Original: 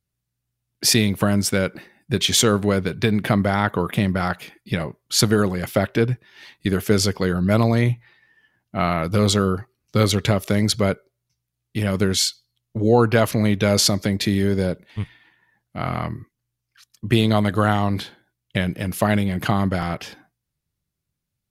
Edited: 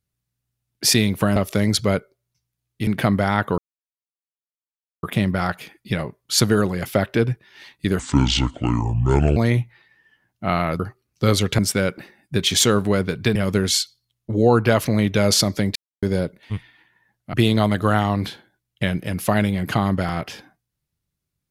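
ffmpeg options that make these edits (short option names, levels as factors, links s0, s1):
-filter_complex "[0:a]asplit=12[s0][s1][s2][s3][s4][s5][s6][s7][s8][s9][s10][s11];[s0]atrim=end=1.362[s12];[s1]atrim=start=10.308:end=11.822[s13];[s2]atrim=start=3.128:end=3.84,asetpts=PTS-STARTPTS,afade=t=out:st=0.708:d=0.004:c=hsin,apad=pad_dur=1.45[s14];[s3]atrim=start=3.84:end=6.804,asetpts=PTS-STARTPTS,afade=t=in:d=0.004:c=hsin[s15];[s4]atrim=start=6.8:end=7.68,asetpts=PTS-STARTPTS,asetrate=28224,aresample=44100[s16];[s5]atrim=start=7.676:end=9.112[s17];[s6]atrim=start=9.518:end=10.312[s18];[s7]atrim=start=1.358:end=3.132[s19];[s8]atrim=start=11.818:end=14.22,asetpts=PTS-STARTPTS,afade=t=out:st=2.398:d=0.004:c=hsin[s20];[s9]atrim=start=14.22:end=14.49,asetpts=PTS-STARTPTS,volume=0[s21];[s10]atrim=start=14.49:end=15.802,asetpts=PTS-STARTPTS,afade=t=in:d=0.004:c=hsin[s22];[s11]atrim=start=17.068[s23];[s12][s13]acrossfade=d=0.004:c1=hsin:c2=hsin[s24];[s14][s15]concat=n=2:v=0:a=1[s25];[s24][s25]acrossfade=d=0.004:c1=hsin:c2=hsin[s26];[s26][s16]acrossfade=d=0.004:c1=hsin:c2=hsin[s27];[s27][s17]acrossfade=d=0.004:c1=hsin:c2=hsin[s28];[s28][s18]acrossfade=d=0.004:c1=hsin:c2=hsin[s29];[s29][s19]acrossfade=d=0.004:c1=hsin:c2=hsin[s30];[s20][s21][s22]concat=n=3:v=0:a=1[s31];[s30][s31]acrossfade=d=0.004:c1=hsin:c2=hsin[s32];[s32][s23]acrossfade=d=0.004:c1=hsin:c2=hsin"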